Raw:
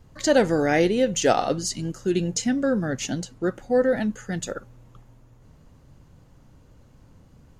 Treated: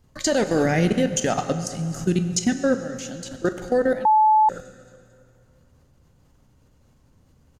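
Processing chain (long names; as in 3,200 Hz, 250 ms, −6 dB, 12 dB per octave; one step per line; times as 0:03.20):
high-shelf EQ 3,800 Hz +5.5 dB
repeating echo 224 ms, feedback 47%, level −21.5 dB
output level in coarse steps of 22 dB
brickwall limiter −19.5 dBFS, peak gain reduction 9.5 dB
0:00.65–0:02.36: graphic EQ with 15 bands 160 Hz +12 dB, 400 Hz −5 dB, 4,000 Hz −5 dB
convolution reverb RT60 2.5 s, pre-delay 6 ms, DRR 8 dB
0:04.05–0:04.49: beep over 864 Hz −20.5 dBFS
level +8 dB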